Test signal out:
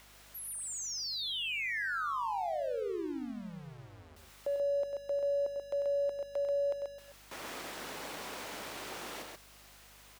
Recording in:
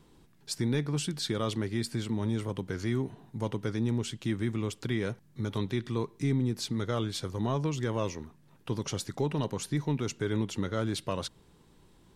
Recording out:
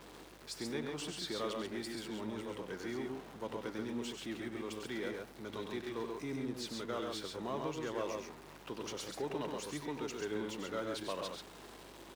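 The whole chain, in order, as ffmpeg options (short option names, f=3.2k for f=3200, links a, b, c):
-filter_complex "[0:a]aeval=exprs='val(0)+0.5*0.0126*sgn(val(0))':c=same,highpass=320,highshelf=f=5.6k:g=-8.5,aecho=1:1:96.21|134.1:0.398|0.631,acrossover=split=690|2500[a][b][c];[b]acompressor=mode=upward:threshold=-54dB:ratio=2.5[d];[a][d][c]amix=inputs=3:normalize=0,aeval=exprs='val(0)+0.00158*(sin(2*PI*50*n/s)+sin(2*PI*2*50*n/s)/2+sin(2*PI*3*50*n/s)/3+sin(2*PI*4*50*n/s)/4+sin(2*PI*5*50*n/s)/5)':c=same,volume=-7dB"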